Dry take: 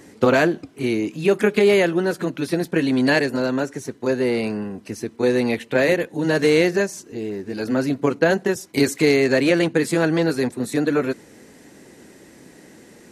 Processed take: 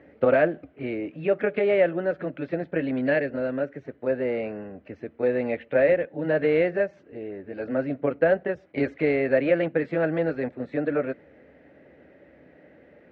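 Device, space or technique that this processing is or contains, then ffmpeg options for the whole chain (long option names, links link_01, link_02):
bass cabinet: -filter_complex "[0:a]asettb=1/sr,asplit=3[link_01][link_02][link_03];[link_01]atrim=end=2.994[link_04];[link_02]atrim=start=2.99:end=3.83,asetpts=PTS-STARTPTS,afade=type=in:duration=0.004:curve=qsin,afade=type=out:start_time=0.836:duration=0.004:curve=qsin,equalizer=frequency=860:width=1.4:gain=-5[link_05];[link_03]atrim=start=3.826[link_06];[link_04][link_05]acrossfade=duration=0.004:curve1=hsin:curve2=qsin[link_07];[link_07][link_06]acrossfade=duration=0.004:curve1=qsin:curve2=hsin,highpass=62,equalizer=frequency=71:width_type=q:width=4:gain=9,equalizer=frequency=110:width_type=q:width=4:gain=-6,equalizer=frequency=210:width_type=q:width=4:gain=-7,equalizer=frequency=370:width_type=q:width=4:gain=-5,equalizer=frequency=580:width_type=q:width=4:gain=10,equalizer=frequency=1000:width_type=q:width=4:gain=-9,lowpass=frequency=2400:width=0.5412,lowpass=frequency=2400:width=1.3066,volume=-5.5dB"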